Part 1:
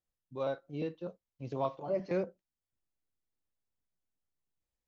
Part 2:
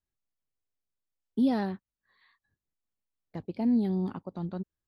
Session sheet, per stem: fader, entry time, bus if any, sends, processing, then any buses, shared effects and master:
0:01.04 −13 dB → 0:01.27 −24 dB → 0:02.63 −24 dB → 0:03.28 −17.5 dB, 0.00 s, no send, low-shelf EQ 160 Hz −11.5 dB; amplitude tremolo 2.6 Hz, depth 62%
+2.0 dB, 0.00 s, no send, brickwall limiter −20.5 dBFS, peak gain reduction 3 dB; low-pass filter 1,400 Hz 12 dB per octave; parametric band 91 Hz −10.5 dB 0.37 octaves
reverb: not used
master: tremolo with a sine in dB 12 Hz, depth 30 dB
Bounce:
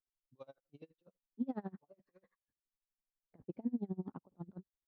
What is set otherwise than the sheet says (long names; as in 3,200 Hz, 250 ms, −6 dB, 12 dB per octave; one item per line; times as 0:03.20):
stem 1: missing low-shelf EQ 160 Hz −11.5 dB
stem 2 +2.0 dB → −5.5 dB